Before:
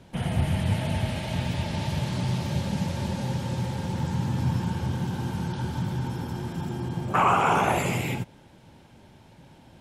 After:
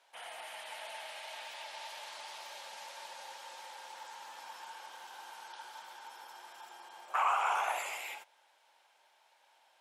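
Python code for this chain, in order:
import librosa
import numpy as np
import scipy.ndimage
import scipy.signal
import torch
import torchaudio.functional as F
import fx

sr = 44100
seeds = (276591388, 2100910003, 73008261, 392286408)

y = scipy.signal.sosfilt(scipy.signal.butter(4, 710.0, 'highpass', fs=sr, output='sos'), x)
y = y * 10.0 ** (-8.0 / 20.0)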